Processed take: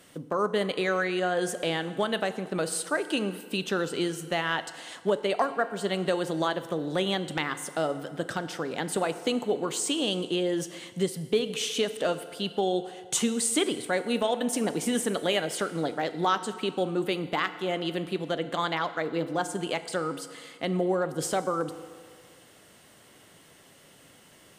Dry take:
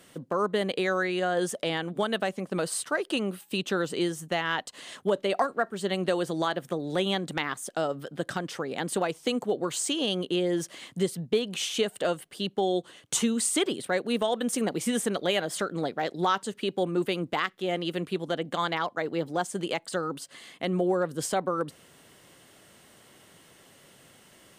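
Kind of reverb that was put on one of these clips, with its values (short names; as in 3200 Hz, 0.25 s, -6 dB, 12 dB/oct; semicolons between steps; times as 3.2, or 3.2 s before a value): FDN reverb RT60 1.9 s, low-frequency decay 0.7×, high-frequency decay 0.75×, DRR 10.5 dB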